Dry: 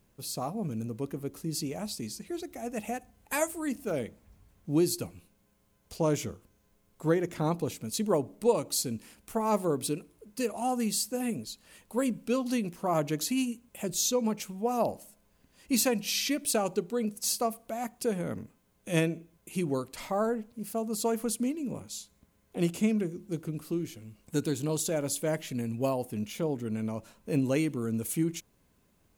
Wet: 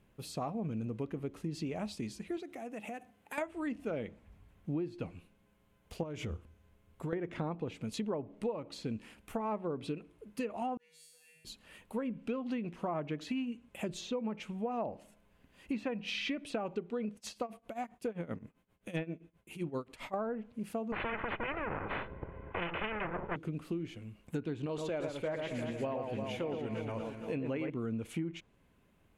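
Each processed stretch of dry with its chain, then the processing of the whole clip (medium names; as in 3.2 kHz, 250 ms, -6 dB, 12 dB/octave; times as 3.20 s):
2.37–3.38 s: high-pass 160 Hz + compression 4:1, threshold -40 dBFS
6.03–7.13 s: peaking EQ 77 Hz +13.5 dB 0.47 oct + compression 12:1, threshold -32 dBFS
10.77–11.45 s: amplifier tone stack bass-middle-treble 10-0-10 + feedback comb 160 Hz, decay 1.1 s, mix 100%
17.15–20.14 s: tremolo 7.6 Hz, depth 89% + overload inside the chain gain 21.5 dB
20.92–23.36 s: comb filter that takes the minimum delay 2 ms + Gaussian low-pass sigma 4.9 samples + spectrum-flattening compressor 4:1
24.66–27.70 s: peaking EQ 180 Hz -8 dB 1.2 oct + echo whose repeats swap between lows and highs 116 ms, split 2.4 kHz, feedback 78%, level -5 dB
whole clip: low-pass that closes with the level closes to 2.2 kHz, closed at -24 dBFS; resonant high shelf 3.8 kHz -8 dB, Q 1.5; compression 6:1, threshold -33 dBFS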